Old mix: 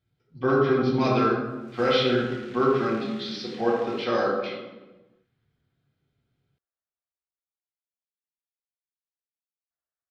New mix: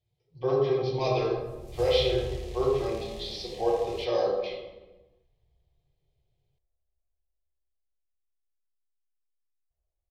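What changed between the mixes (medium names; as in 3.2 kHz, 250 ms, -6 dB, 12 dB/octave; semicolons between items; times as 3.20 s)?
background: remove band-pass filter 2.3 kHz, Q 0.8; master: add static phaser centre 590 Hz, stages 4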